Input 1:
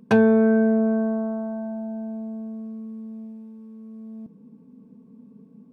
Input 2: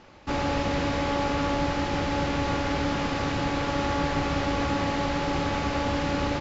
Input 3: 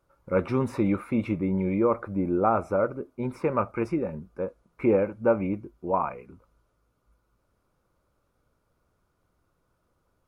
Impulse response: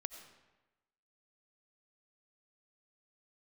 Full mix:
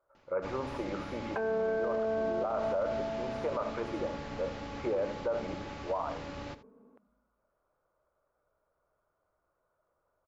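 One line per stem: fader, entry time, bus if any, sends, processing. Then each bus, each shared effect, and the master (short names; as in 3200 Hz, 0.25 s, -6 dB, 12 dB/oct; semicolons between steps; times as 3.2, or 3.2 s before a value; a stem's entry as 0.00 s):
+2.0 dB, 1.25 s, bus A, send -15.5 dB, no echo send, dry
-8.5 dB, 0.15 s, no bus, no send, echo send -20.5 dB, auto duck -7 dB, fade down 0.20 s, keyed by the third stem
-5.5 dB, 0.00 s, bus A, send -8.5 dB, echo send -13.5 dB, bell 620 Hz +8 dB 0.22 oct
bus A: 0.0 dB, Butterworth band-pass 880 Hz, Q 0.58; limiter -16.5 dBFS, peak gain reduction 7 dB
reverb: on, RT60 1.1 s, pre-delay 50 ms
echo: echo 79 ms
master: limiter -24 dBFS, peak gain reduction 10.5 dB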